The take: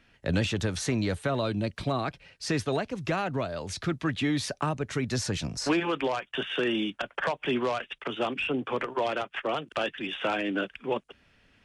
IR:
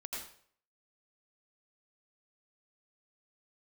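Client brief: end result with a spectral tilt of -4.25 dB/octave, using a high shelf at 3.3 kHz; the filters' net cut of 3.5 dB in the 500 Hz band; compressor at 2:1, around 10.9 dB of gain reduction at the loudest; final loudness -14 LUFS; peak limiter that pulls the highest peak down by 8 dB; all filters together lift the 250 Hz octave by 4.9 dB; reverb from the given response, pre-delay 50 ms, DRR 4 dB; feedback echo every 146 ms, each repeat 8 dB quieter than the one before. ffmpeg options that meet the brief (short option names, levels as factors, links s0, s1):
-filter_complex "[0:a]equalizer=f=250:t=o:g=9,equalizer=f=500:t=o:g=-8.5,highshelf=f=3300:g=5,acompressor=threshold=0.01:ratio=2,alimiter=level_in=1.78:limit=0.0631:level=0:latency=1,volume=0.562,aecho=1:1:146|292|438|584|730:0.398|0.159|0.0637|0.0255|0.0102,asplit=2[s0][s1];[1:a]atrim=start_sample=2205,adelay=50[s2];[s1][s2]afir=irnorm=-1:irlink=0,volume=0.668[s3];[s0][s3]amix=inputs=2:normalize=0,volume=13.3"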